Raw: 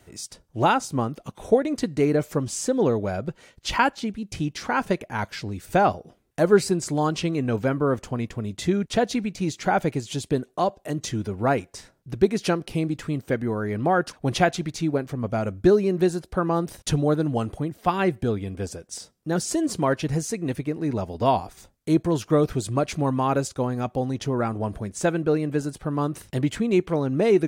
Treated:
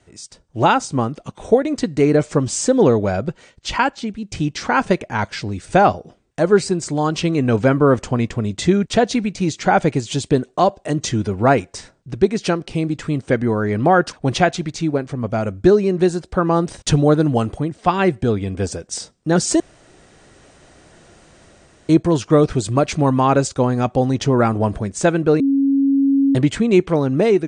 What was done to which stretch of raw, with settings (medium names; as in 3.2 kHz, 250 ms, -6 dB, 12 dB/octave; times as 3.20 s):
19.60–21.89 s: room tone
25.40–26.35 s: bleep 275 Hz -19.5 dBFS
whole clip: steep low-pass 9.1 kHz 96 dB/octave; level rider gain up to 11 dB; trim -1 dB